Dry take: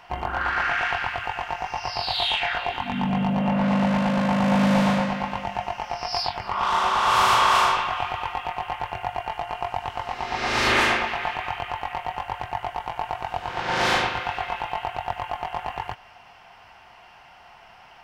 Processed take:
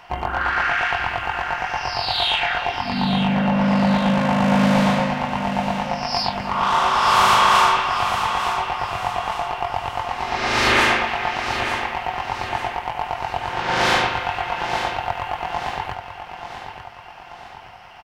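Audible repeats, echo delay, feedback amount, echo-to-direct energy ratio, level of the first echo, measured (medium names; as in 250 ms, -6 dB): 4, 885 ms, 46%, -8.0 dB, -9.0 dB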